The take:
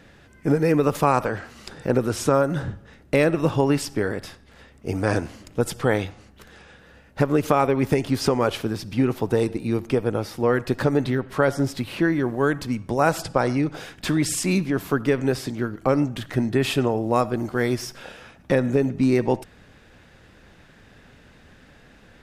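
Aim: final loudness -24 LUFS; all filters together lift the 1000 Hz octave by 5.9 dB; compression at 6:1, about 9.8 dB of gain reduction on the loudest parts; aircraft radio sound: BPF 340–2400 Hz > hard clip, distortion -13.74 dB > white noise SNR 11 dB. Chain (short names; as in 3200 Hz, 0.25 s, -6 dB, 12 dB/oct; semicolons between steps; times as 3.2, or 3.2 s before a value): bell 1000 Hz +8 dB; compressor 6:1, threshold -20 dBFS; BPF 340–2400 Hz; hard clip -19.5 dBFS; white noise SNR 11 dB; gain +6.5 dB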